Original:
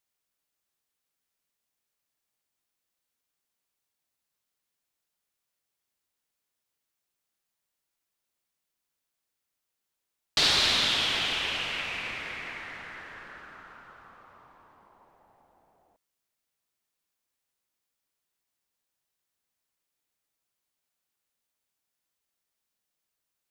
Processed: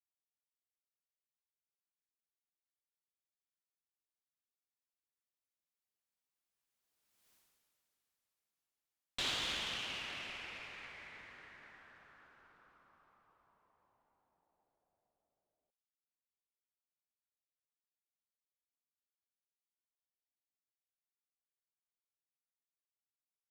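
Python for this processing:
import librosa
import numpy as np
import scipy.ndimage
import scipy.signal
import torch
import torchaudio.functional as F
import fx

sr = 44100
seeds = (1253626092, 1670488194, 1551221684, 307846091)

y = fx.diode_clip(x, sr, knee_db=-24.5)
y = fx.doppler_pass(y, sr, speed_mps=57, closest_m=6.2, pass_at_s=7.32)
y = y * librosa.db_to_amplitude(12.0)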